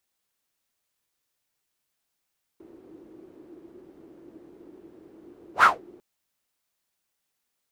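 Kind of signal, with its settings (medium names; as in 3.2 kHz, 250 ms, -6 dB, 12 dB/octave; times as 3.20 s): whoosh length 3.40 s, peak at 3.03 s, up 0.10 s, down 0.20 s, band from 340 Hz, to 1.4 kHz, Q 7.2, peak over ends 35 dB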